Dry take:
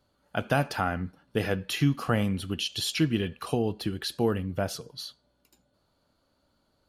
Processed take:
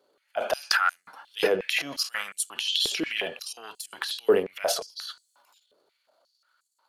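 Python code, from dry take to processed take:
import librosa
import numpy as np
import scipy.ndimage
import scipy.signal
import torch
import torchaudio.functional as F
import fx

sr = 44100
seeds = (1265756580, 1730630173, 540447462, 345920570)

y = fx.transient(x, sr, attack_db=-7, sustain_db=12)
y = fx.filter_held_highpass(y, sr, hz=5.6, low_hz=420.0, high_hz=7600.0)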